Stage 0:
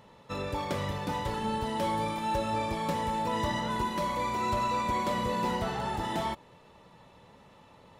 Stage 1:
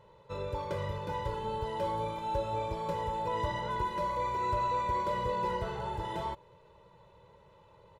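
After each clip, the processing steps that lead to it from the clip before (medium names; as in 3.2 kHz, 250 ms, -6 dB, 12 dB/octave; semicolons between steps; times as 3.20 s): treble shelf 2.4 kHz -10.5 dB; comb 2 ms, depth 94%; trim -5 dB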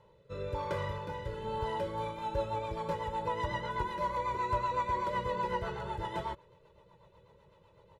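dynamic bell 1.5 kHz, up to +5 dB, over -48 dBFS, Q 0.93; rotary cabinet horn 1 Hz, later 8 Hz, at 1.59 s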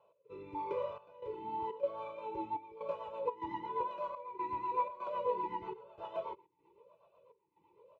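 trance gate "x.xxxxxx..xxx" 123 bpm -12 dB; talking filter a-u 0.99 Hz; trim +6.5 dB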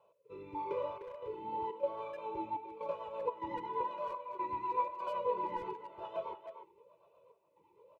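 speakerphone echo 300 ms, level -9 dB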